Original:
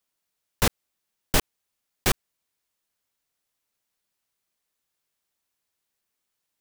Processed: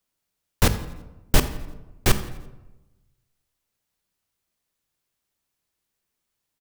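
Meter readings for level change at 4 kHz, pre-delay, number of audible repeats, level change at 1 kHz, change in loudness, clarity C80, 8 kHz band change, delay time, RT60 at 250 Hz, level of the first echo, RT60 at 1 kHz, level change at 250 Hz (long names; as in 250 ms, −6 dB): +0.5 dB, 20 ms, 2, +1.0 dB, +1.5 dB, 13.5 dB, +0.5 dB, 85 ms, 1.2 s, −19.0 dB, 1.0 s, +4.5 dB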